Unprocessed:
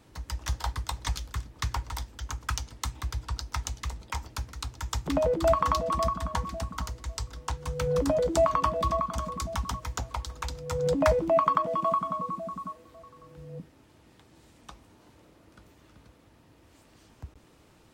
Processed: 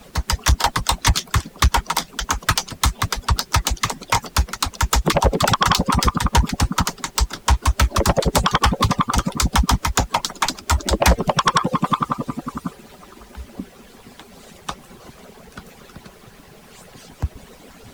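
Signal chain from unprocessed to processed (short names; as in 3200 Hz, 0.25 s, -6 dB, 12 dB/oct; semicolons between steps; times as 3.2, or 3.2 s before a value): median-filter separation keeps percussive; added noise pink -70 dBFS; sine folder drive 17 dB, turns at -6.5 dBFS; gain -1.5 dB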